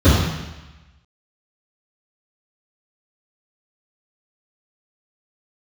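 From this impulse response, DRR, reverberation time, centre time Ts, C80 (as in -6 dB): -16.0 dB, 1.1 s, 81 ms, 2.5 dB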